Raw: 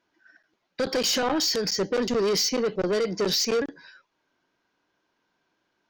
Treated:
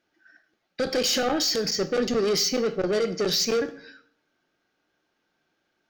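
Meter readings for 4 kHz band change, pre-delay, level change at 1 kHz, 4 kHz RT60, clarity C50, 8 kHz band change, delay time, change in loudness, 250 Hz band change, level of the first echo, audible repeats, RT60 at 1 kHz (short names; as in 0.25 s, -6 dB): +0.5 dB, 10 ms, -1.0 dB, 0.50 s, 15.0 dB, +0.5 dB, none, 0.0 dB, 0.0 dB, none, none, 0.55 s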